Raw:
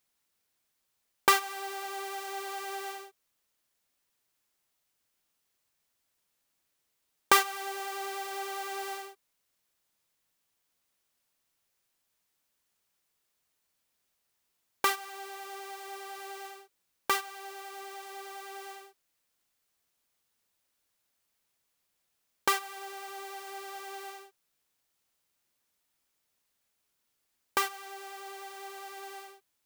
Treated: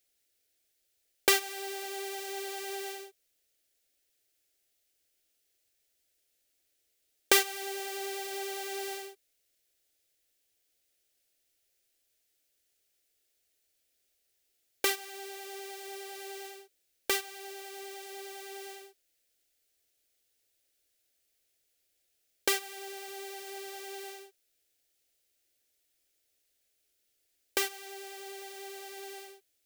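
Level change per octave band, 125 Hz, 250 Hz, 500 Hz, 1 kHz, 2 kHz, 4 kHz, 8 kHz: no reading, +2.0 dB, +3.0 dB, -8.0 dB, -1.5 dB, +2.0 dB, +3.0 dB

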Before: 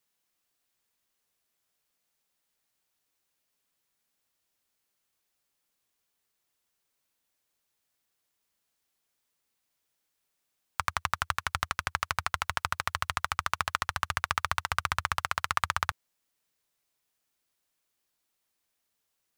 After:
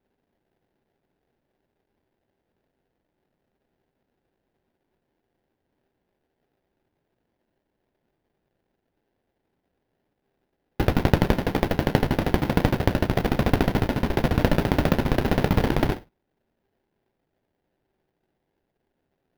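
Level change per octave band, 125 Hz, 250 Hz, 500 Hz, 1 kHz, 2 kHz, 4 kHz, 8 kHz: +18.5 dB, +31.5 dB, +22.0 dB, +1.0 dB, 0.0 dB, +1.5 dB, -4.0 dB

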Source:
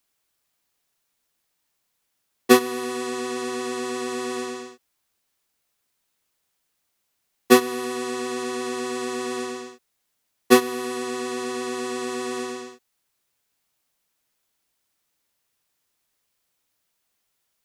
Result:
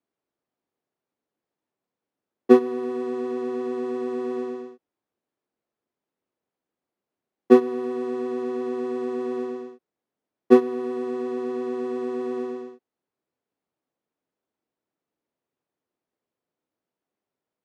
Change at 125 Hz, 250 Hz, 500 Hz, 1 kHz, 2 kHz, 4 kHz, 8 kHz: no reading, +1.5 dB, +2.0 dB, -5.5 dB, -12.0 dB, under -15 dB, under -20 dB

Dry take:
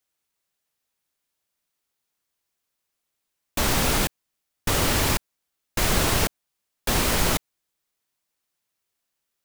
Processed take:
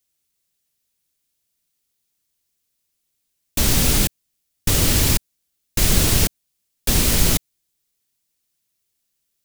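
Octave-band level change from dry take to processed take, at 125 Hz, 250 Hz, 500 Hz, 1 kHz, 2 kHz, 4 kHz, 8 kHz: +6.5 dB, +4.0 dB, -0.5 dB, -4.5 dB, -0.5 dB, +4.0 dB, +6.5 dB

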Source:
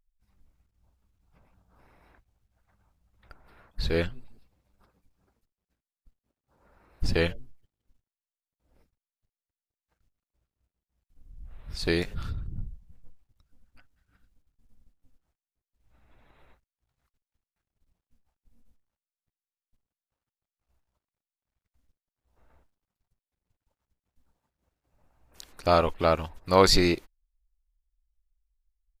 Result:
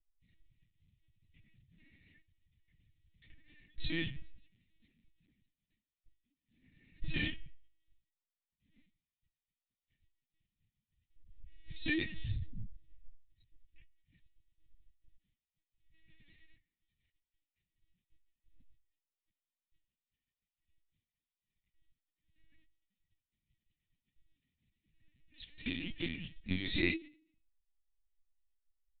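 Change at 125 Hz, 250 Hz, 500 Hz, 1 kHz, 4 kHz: -10.0 dB, -8.5 dB, -22.0 dB, -35.5 dB, -11.0 dB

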